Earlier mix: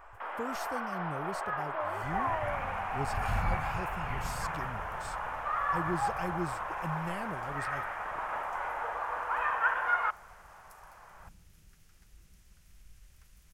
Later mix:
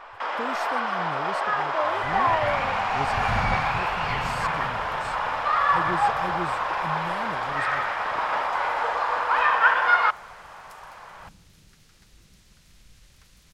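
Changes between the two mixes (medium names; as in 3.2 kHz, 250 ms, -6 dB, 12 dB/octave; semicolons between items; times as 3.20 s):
speech -6.5 dB; first sound: remove distance through air 350 m; master: add graphic EQ 125/250/500/1000/2000/4000/8000 Hz +6/+8/+7/+6/+4/+12/+4 dB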